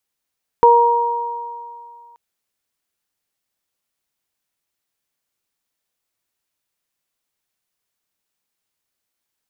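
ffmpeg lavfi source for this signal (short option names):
-f lavfi -i "aevalsrc='0.316*pow(10,-3*t/1.78)*sin(2*PI*472*t)+0.447*pow(10,-3*t/2.48)*sin(2*PI*944*t)':d=1.53:s=44100"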